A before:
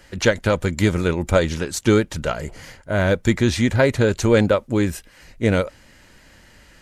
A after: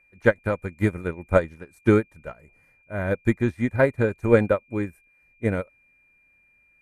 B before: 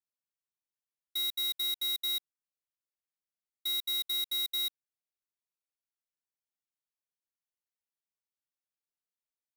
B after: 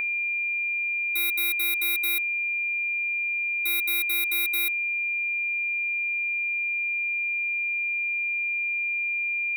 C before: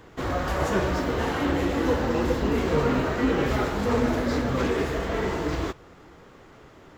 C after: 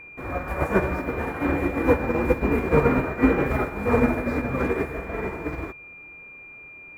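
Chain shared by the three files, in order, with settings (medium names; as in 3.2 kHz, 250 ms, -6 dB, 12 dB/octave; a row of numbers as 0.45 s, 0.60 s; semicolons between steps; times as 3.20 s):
whistle 2.4 kHz -29 dBFS; high-order bell 4.4 kHz -13.5 dB; upward expansion 2.5:1, over -28 dBFS; normalise loudness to -24 LUFS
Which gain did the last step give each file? +1.0 dB, +10.5 dB, +6.5 dB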